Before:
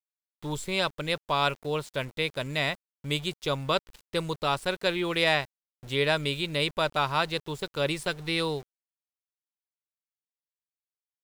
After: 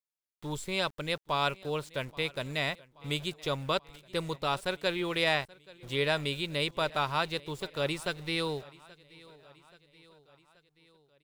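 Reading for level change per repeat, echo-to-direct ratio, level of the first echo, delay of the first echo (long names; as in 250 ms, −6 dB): −4.5 dB, −21.0 dB, −22.5 dB, 829 ms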